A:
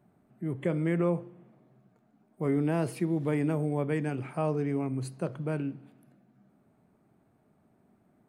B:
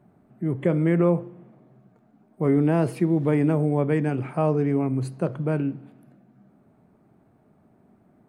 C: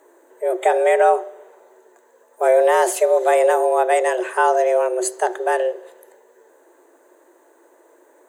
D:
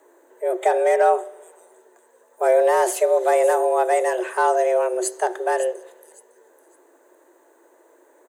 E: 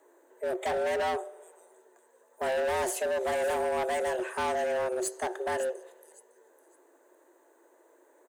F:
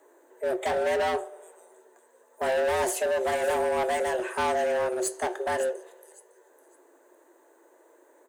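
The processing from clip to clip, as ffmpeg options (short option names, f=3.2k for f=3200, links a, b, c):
-af "highshelf=f=2.4k:g=-8,volume=7.5dB"
-af "afreqshift=250,aexciter=amount=3.5:drive=4.3:freq=3.5k,superequalizer=6b=1.78:7b=0.562:11b=2:14b=0.631:15b=3.16,volume=6.5dB"
-filter_complex "[0:a]acrossover=split=460|1500|5200[a][b][c][d];[c]asoftclip=type=hard:threshold=-30dB[e];[d]aecho=1:1:557|1114|1671:0.335|0.0837|0.0209[f];[a][b][e][f]amix=inputs=4:normalize=0,volume=-2dB"
-af "asoftclip=type=hard:threshold=-20dB,volume=-6.5dB"
-af "flanger=delay=9.9:depth=2.9:regen=-72:speed=0.32:shape=sinusoidal,volume=7.5dB"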